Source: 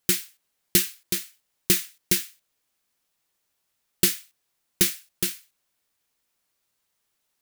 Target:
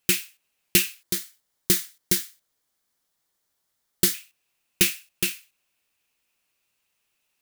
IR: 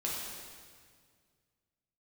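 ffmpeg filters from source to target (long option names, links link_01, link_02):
-af "asetnsamples=nb_out_samples=441:pad=0,asendcmd='1.02 equalizer g -7;4.14 equalizer g 11',equalizer=frequency=2600:width_type=o:width=0.33:gain=10"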